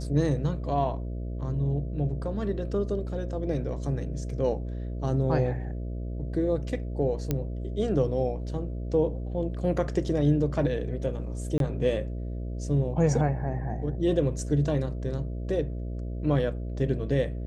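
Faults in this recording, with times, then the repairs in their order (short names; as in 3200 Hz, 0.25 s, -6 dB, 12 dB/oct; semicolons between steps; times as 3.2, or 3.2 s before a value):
buzz 60 Hz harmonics 11 -33 dBFS
7.31 pop -13 dBFS
11.58–11.6 gap 22 ms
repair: de-click; de-hum 60 Hz, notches 11; interpolate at 11.58, 22 ms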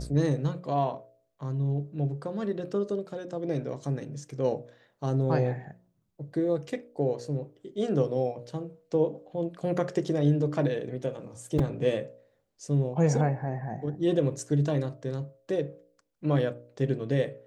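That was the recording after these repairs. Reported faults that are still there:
none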